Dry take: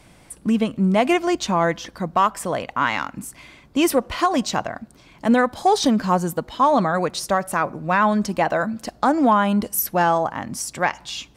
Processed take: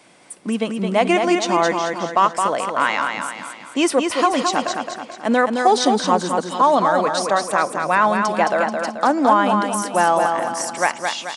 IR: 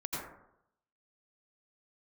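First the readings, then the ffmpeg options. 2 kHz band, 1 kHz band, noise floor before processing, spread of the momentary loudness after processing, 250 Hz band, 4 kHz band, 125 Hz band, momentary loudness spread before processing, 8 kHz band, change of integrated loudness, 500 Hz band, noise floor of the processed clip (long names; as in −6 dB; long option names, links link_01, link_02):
+3.5 dB, +3.5 dB, −51 dBFS, 8 LU, −1.0 dB, +3.5 dB, −5.0 dB, 10 LU, +3.0 dB, +2.0 dB, +3.0 dB, −39 dBFS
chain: -af "highpass=290,aecho=1:1:217|434|651|868|1085|1302:0.562|0.264|0.124|0.0584|0.0274|0.0129,aresample=22050,aresample=44100,volume=2dB"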